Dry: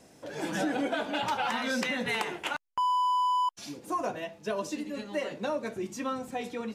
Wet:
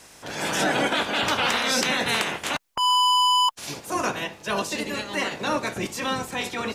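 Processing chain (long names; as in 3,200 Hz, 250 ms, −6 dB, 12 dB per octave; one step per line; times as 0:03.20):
ceiling on every frequency bin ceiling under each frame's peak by 18 dB
transient designer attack −6 dB, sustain −1 dB
level +8 dB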